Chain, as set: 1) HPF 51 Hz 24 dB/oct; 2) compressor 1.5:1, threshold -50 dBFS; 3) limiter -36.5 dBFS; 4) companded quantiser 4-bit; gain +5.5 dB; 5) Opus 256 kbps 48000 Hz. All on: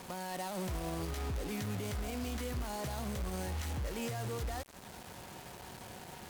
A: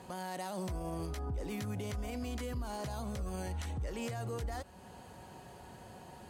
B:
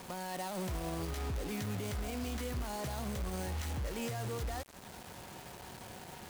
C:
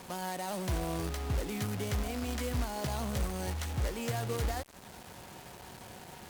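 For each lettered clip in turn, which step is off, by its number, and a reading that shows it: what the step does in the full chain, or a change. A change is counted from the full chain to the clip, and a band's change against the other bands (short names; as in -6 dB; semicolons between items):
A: 4, distortion -11 dB; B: 5, crest factor change -1.5 dB; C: 3, mean gain reduction 2.5 dB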